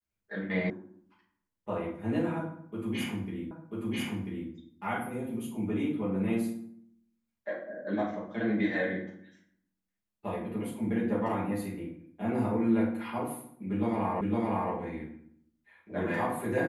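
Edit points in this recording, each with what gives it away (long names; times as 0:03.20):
0:00.70: cut off before it has died away
0:03.51: the same again, the last 0.99 s
0:14.21: the same again, the last 0.51 s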